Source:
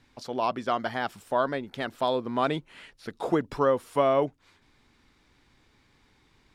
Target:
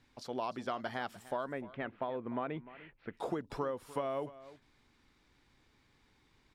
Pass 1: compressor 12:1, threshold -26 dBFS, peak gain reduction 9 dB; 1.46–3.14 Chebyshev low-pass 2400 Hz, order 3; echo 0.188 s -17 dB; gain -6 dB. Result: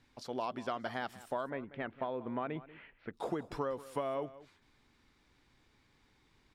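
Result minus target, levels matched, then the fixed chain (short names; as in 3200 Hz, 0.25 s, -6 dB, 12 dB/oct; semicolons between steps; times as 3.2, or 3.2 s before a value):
echo 0.112 s early
compressor 12:1, threshold -26 dBFS, peak gain reduction 9 dB; 1.46–3.14 Chebyshev low-pass 2400 Hz, order 3; echo 0.3 s -17 dB; gain -6 dB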